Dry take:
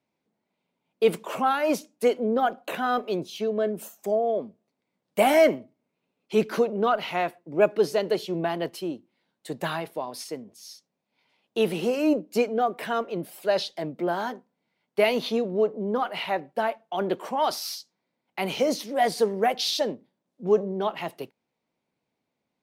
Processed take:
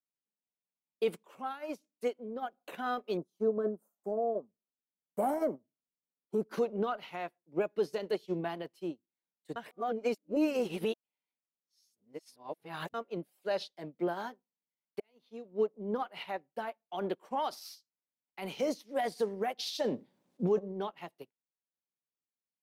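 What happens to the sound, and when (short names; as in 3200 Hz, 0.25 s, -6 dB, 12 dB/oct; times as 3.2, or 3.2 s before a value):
1.17–2.63 compressor 1.5:1, threshold -39 dBFS
3.17–6.51 EQ curve 1300 Hz 0 dB, 2500 Hz -26 dB, 9100 Hz -6 dB
9.56–12.94 reverse
15–15.99 fade in
19.84–20.59 fast leveller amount 50%
whole clip: notch 650 Hz, Q 17; limiter -20 dBFS; upward expander 2.5:1, over -42 dBFS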